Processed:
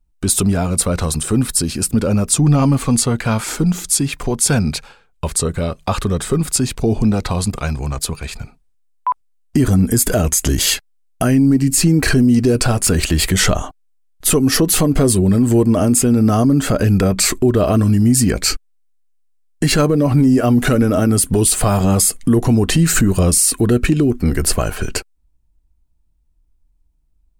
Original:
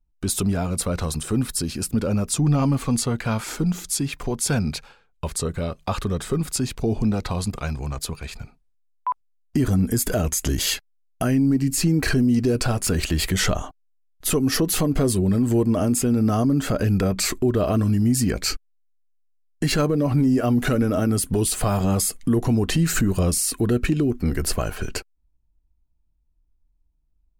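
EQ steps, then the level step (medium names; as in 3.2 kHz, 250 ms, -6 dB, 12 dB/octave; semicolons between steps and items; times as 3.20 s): peaking EQ 8.7 kHz +4.5 dB 0.47 oct; +6.5 dB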